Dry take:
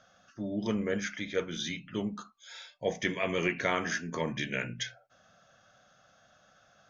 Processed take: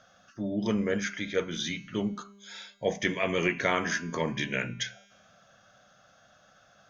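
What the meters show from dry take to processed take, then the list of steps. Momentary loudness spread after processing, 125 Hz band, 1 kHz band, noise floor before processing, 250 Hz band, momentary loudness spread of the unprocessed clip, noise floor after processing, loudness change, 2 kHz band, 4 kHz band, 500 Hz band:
11 LU, +3.0 dB, +3.0 dB, -64 dBFS, +3.0 dB, 12 LU, -61 dBFS, +3.0 dB, +3.0 dB, +2.5 dB, +2.5 dB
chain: feedback comb 200 Hz, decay 1.4 s, mix 50%; trim +8.5 dB

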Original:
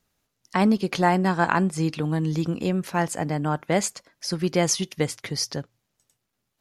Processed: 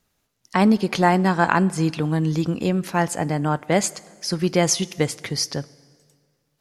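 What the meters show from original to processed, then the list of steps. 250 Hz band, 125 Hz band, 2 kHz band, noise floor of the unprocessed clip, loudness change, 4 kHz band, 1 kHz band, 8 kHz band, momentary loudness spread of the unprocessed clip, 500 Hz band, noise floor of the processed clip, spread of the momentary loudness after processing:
+3.0 dB, +3.0 dB, +3.0 dB, -79 dBFS, +3.0 dB, +3.0 dB, +3.0 dB, +3.0 dB, 8 LU, +3.0 dB, -72 dBFS, 8 LU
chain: plate-style reverb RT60 1.9 s, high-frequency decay 0.85×, DRR 20 dB; trim +3 dB

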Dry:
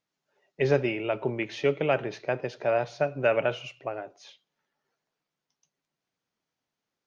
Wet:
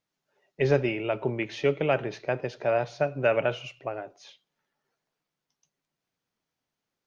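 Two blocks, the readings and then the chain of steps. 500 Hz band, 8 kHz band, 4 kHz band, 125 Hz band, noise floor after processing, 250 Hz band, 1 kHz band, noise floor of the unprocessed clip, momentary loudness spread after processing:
0.0 dB, no reading, 0.0 dB, +2.0 dB, under -85 dBFS, +0.5 dB, 0.0 dB, under -85 dBFS, 12 LU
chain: bass shelf 91 Hz +6.5 dB

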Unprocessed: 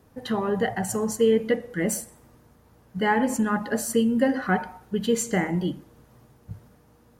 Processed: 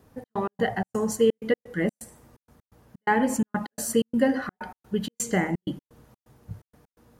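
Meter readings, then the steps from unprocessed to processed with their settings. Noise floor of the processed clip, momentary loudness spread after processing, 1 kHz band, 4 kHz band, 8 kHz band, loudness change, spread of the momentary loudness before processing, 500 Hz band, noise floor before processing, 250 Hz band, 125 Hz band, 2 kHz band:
under -85 dBFS, 20 LU, -1.5 dB, -2.5 dB, -2.5 dB, -2.0 dB, 19 LU, -2.0 dB, -58 dBFS, -2.0 dB, -2.5 dB, -2.0 dB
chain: trance gate "xx.x.xx.x" 127 bpm -60 dB

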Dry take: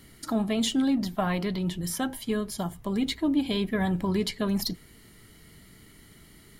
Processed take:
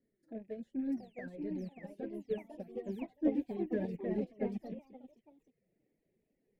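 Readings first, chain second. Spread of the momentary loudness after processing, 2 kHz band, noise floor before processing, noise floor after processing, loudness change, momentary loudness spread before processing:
14 LU, -17.5 dB, -54 dBFS, -82 dBFS, -11.0 dB, 6 LU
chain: rattle on loud lows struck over -38 dBFS, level -25 dBFS; peaking EQ 1.6 kHz -9.5 dB 2.3 oct; painted sound fall, 0.97–1.26 s, 1.5–6 kHz -31 dBFS; flange 1.1 Hz, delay 4 ms, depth 3 ms, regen +47%; overdrive pedal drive 21 dB, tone 1.5 kHz, clips at -18 dBFS; FFT filter 160 Hz 0 dB, 550 Hz +5 dB, 1.2 kHz -28 dB, 1.7 kHz -1 dB, 2.9 kHz -19 dB, 12 kHz -13 dB; ever faster or slower copies 717 ms, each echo +2 st, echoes 3; reverb removal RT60 0.59 s; upward expansion 2.5:1, over -35 dBFS; trim -4.5 dB

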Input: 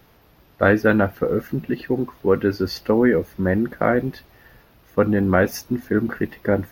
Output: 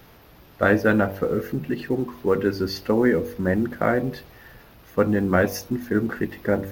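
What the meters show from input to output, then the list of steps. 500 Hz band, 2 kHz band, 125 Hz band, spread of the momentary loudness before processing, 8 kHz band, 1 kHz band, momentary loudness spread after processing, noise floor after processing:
-2.5 dB, -1.5 dB, -2.5 dB, 9 LU, no reading, -2.0 dB, 8 LU, -50 dBFS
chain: companding laws mixed up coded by mu; de-hum 48.34 Hz, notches 23; trim -2 dB

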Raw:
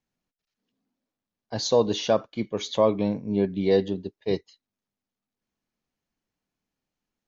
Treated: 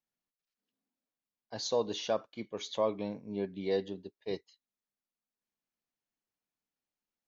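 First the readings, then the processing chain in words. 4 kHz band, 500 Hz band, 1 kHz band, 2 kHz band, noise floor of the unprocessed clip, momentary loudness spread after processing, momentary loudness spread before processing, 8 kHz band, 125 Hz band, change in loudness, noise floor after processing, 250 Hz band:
-8.0 dB, -10.0 dB, -8.5 dB, -8.0 dB, under -85 dBFS, 10 LU, 9 LU, no reading, -14.5 dB, -10.0 dB, under -85 dBFS, -12.5 dB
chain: bass shelf 250 Hz -9 dB; trim -8 dB

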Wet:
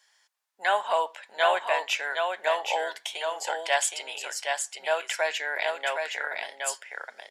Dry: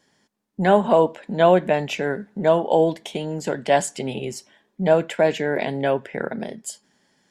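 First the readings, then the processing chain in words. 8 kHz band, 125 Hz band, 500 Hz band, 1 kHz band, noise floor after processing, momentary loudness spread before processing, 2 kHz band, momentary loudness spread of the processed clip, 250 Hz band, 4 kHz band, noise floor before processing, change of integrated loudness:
+3.0 dB, under -40 dB, -10.5 dB, -4.0 dB, -67 dBFS, 14 LU, +2.0 dB, 8 LU, -31.0 dB, +3.0 dB, -70 dBFS, -7.0 dB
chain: Bessel high-pass 1.2 kHz, order 4; on a send: delay 767 ms -4.5 dB; on the sum: trim +2 dB

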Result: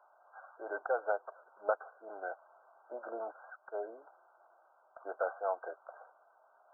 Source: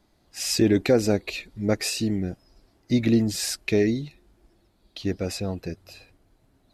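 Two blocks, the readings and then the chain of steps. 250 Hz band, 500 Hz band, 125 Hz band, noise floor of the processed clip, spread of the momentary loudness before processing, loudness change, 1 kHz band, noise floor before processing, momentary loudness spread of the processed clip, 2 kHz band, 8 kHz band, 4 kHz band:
-34.0 dB, -11.0 dB, under -40 dB, -68 dBFS, 17 LU, -15.0 dB, +2.0 dB, -65 dBFS, 19 LU, -9.5 dB, under -40 dB, under -40 dB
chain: steep high-pass 640 Hz 36 dB/octave; compression 12:1, threshold -36 dBFS, peak gain reduction 14.5 dB; brick-wall FIR low-pass 1.6 kHz; trim +9.5 dB

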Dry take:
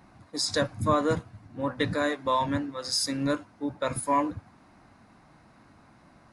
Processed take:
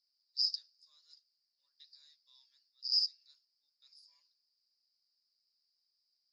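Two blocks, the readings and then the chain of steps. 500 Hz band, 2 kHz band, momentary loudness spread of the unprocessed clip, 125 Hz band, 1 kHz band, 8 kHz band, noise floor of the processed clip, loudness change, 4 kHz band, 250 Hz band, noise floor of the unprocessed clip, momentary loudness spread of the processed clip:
under -40 dB, under -40 dB, 8 LU, under -40 dB, under -40 dB, -25.5 dB, -83 dBFS, -4.5 dB, -2.0 dB, under -40 dB, -58 dBFS, 13 LU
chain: Butterworth band-pass 4.9 kHz, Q 7

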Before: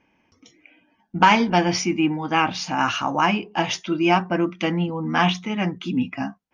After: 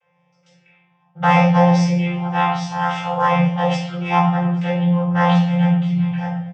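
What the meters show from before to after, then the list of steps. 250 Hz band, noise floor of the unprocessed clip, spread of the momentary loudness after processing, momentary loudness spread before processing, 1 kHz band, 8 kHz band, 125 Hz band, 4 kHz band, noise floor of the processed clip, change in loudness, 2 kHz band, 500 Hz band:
+5.0 dB, -66 dBFS, 8 LU, 8 LU, +2.5 dB, no reading, +11.5 dB, -4.5 dB, -62 dBFS, +4.0 dB, -1.0 dB, +3.5 dB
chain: vocoder on a held chord bare fifth, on F3; Chebyshev band-stop 160–460 Hz, order 3; peaking EQ 330 Hz -2.5 dB; delay 832 ms -24 dB; simulated room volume 190 m³, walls mixed, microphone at 2.4 m

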